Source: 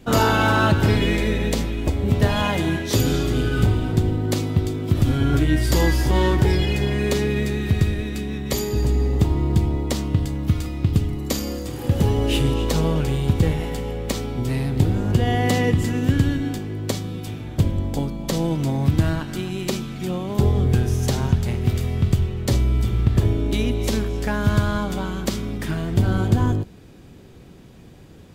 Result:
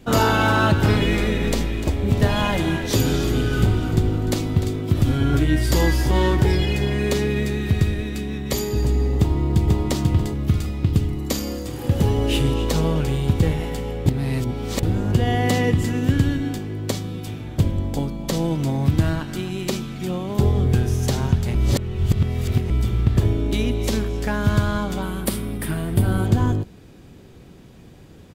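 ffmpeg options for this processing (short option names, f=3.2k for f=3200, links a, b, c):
-filter_complex "[0:a]asettb=1/sr,asplit=3[a][b][c];[a]atrim=end=0.544[d];[b]atrim=start=0.54:end=4.81,asetpts=PTS-STARTPTS,afade=t=in:d=0.004:c=qsin,afade=t=out:st=4.266:d=0.004:c=qsin,asplit=6[e][f][g][h][i][j];[f]adelay=299,afreqshift=-54,volume=-12dB[k];[g]adelay=598,afreqshift=-108,volume=-18.2dB[l];[h]adelay=897,afreqshift=-162,volume=-24.4dB[m];[i]adelay=1196,afreqshift=-216,volume=-30.6dB[n];[j]adelay=1495,afreqshift=-270,volume=-36.8dB[o];[e][k][l][m][n][o]amix=inputs=6:normalize=0,atrim=end_sample=188307[p];[c]atrim=start=4.806[q];[d][p]acrossfade=d=0.004:c1=hsin:c2=qsin[r];[r][q]acrossfade=d=0.004:c1=qsin:c2=hsin,asplit=2[s][t];[t]afade=t=in:st=9.18:d=0.01,afade=t=out:st=9.84:d=0.01,aecho=0:1:490|980|1470|1960|2450:0.841395|0.294488|0.103071|0.0360748|0.0126262[u];[s][u]amix=inputs=2:normalize=0,asettb=1/sr,asplit=3[v][w][x];[v]atrim=end=25.024[y];[w]atrim=start=25.02:end=26.26,asetpts=PTS-STARTPTS,afade=t=in:d=0.004:c=qsin,afade=t=out:st=1.236:d=0.004:c=qsin,highshelf=f=8k:t=q:w=3:g=7[z];[x]atrim=start=26.256[aa];[y][z]acrossfade=d=0.004:c1=hsin:c2=qsin[ab];[ab][aa]acrossfade=d=0.004:c1=qsin:c2=hsin,asplit=5[ac][ad][ae][af][ag];[ac]atrim=end=14.062[ah];[ad]atrim=start=14.058:end=14.832,asetpts=PTS-STARTPTS,areverse[ai];[ae]atrim=start=14.828:end=21.552[aj];[af]atrim=start=21.548:end=22.702,asetpts=PTS-STARTPTS,areverse[ak];[ag]atrim=start=22.698[al];[ah][ai]acrossfade=d=0.004:c1=hsin:c2=hsin[am];[am][aj]acrossfade=d=0.004:c1=hsin:c2=hsin[an];[an][ak]acrossfade=d=0.004:c1=hsin:c2=hsin[ao];[ao][al]acrossfade=d=0.004:c1=hsin:c2=hsin"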